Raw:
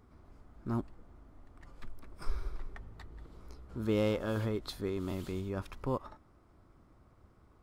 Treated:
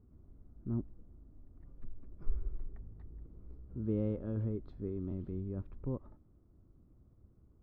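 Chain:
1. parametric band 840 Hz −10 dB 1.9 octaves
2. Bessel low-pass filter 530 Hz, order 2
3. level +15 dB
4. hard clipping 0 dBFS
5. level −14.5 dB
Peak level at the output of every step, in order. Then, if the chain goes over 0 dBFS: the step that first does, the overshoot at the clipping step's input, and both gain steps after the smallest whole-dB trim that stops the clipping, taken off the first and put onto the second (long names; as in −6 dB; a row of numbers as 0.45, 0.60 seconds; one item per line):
−20.0, −20.0, −5.0, −5.0, −19.5 dBFS
no step passes full scale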